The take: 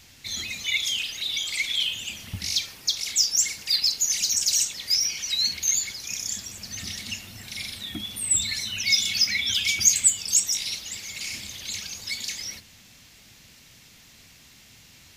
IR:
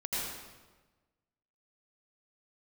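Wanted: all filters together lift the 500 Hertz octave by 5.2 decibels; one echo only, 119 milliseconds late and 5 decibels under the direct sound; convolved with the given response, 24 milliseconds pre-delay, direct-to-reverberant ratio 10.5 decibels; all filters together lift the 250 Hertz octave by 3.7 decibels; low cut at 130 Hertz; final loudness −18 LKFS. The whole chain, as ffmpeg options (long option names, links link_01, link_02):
-filter_complex "[0:a]highpass=130,equalizer=frequency=250:width_type=o:gain=4,equalizer=frequency=500:width_type=o:gain=5.5,aecho=1:1:119:0.562,asplit=2[link_01][link_02];[1:a]atrim=start_sample=2205,adelay=24[link_03];[link_02][link_03]afir=irnorm=-1:irlink=0,volume=-15.5dB[link_04];[link_01][link_04]amix=inputs=2:normalize=0,volume=4.5dB"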